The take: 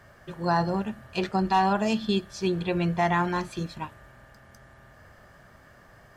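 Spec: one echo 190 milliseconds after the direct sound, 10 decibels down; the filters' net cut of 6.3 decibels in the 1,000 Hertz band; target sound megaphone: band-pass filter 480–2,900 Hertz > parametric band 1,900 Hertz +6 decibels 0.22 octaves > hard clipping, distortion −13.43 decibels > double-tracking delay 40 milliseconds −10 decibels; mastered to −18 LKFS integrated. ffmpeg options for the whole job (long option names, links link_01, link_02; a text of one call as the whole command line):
ffmpeg -i in.wav -filter_complex "[0:a]highpass=480,lowpass=2900,equalizer=frequency=1000:width_type=o:gain=-8,equalizer=frequency=1900:width_type=o:width=0.22:gain=6,aecho=1:1:190:0.316,asoftclip=type=hard:threshold=-24.5dB,asplit=2[link_01][link_02];[link_02]adelay=40,volume=-10dB[link_03];[link_01][link_03]amix=inputs=2:normalize=0,volume=15.5dB" out.wav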